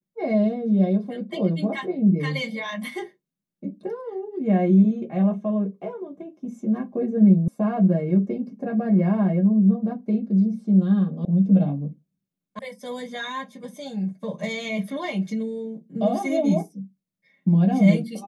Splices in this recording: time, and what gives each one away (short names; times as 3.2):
7.48 sound cut off
11.25 sound cut off
12.59 sound cut off